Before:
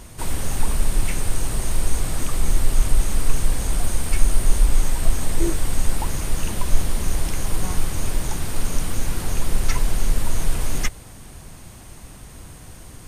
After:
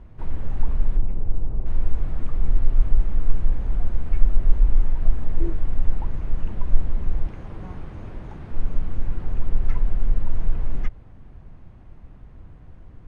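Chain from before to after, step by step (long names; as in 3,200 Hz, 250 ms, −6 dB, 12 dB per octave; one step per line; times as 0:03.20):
0:00.97–0:01.66: running median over 25 samples
low-pass filter 2,200 Hz 12 dB per octave
spectral tilt −2 dB per octave
0:07.27–0:08.51: high-pass filter 110 Hz 6 dB per octave
level −10.5 dB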